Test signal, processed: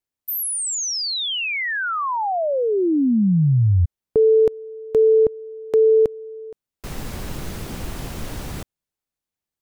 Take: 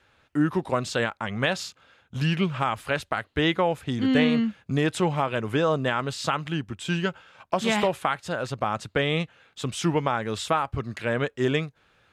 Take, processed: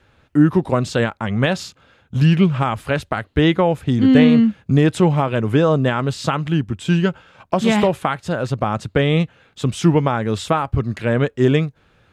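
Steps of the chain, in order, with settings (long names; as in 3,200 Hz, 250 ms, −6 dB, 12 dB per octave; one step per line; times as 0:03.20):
low-shelf EQ 460 Hz +10 dB
level +2.5 dB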